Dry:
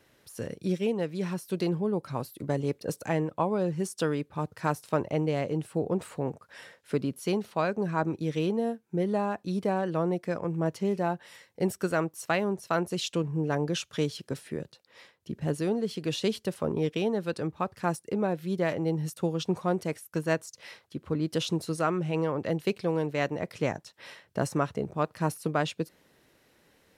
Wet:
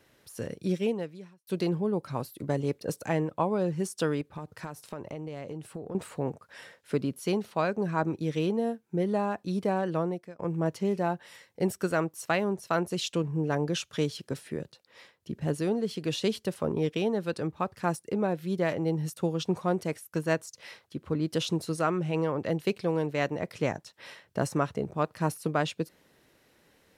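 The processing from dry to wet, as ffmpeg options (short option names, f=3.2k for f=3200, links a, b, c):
-filter_complex "[0:a]asettb=1/sr,asplit=3[a][b][c];[a]atrim=end=4.214[d];[b]atrim=start=4.21:end=5.95,asetpts=PTS-STARTPTS,afade=t=in:d=0.004:c=qsin,afade=t=out:st=1.736:d=0.004:c=qsin,acompressor=threshold=-34dB:ratio=8:attack=3.2:release=140:knee=1:detection=peak[e];[c]atrim=start=5.946[f];[d][e]acrossfade=d=0.004:c1=hsin:c2=qsin[g];[g][f]acrossfade=d=0.004:c1=qsin:c2=hsin,asplit=3[h][i][j];[h]atrim=end=1.47,asetpts=PTS-STARTPTS,afade=t=out:st=0.89:d=0.58:c=qua[k];[i]atrim=start=1.47:end=10.39,asetpts=PTS-STARTPTS,afade=t=in:d=0.004:c=hsin,afade=t=out:st=8.49:d=0.43[l];[j]atrim=start=10.39,asetpts=PTS-STARTPTS,afade=t=in:d=0.004:c=hsin[m];[k][l][m]concat=n=3:v=0:a=1"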